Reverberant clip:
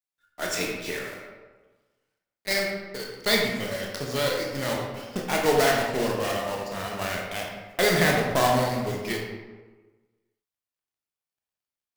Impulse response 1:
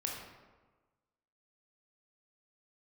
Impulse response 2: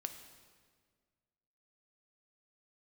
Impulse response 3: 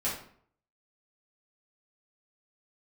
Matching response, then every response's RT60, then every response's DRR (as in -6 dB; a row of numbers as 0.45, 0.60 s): 1; 1.3, 1.7, 0.55 s; -1.0, 6.5, -8.5 dB